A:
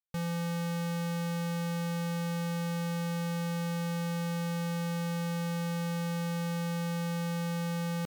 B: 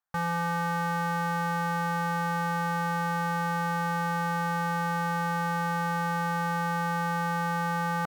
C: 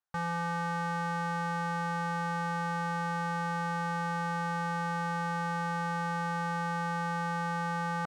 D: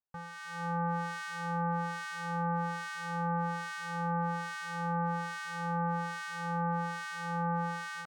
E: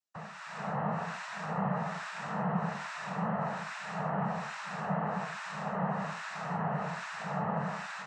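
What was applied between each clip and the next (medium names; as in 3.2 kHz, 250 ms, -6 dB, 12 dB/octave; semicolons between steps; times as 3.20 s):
high-order bell 1.1 kHz +14 dB
Savitzky-Golay filter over 9 samples; trim -4 dB
level rider gain up to 8 dB; harmonic tremolo 1.2 Hz, depth 100%, crossover 1.4 kHz; trim -5 dB
noise-vocoded speech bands 12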